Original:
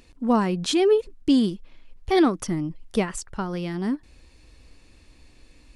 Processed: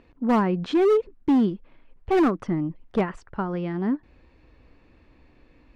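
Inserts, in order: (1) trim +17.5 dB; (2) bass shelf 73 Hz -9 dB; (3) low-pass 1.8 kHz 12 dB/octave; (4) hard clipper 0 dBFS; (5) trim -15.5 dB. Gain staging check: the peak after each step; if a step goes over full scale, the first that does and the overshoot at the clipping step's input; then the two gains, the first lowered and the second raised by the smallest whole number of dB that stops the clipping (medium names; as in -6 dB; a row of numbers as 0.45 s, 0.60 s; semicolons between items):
+8.0 dBFS, +8.0 dBFS, +6.5 dBFS, 0.0 dBFS, -15.5 dBFS; step 1, 6.5 dB; step 1 +10.5 dB, step 5 -8.5 dB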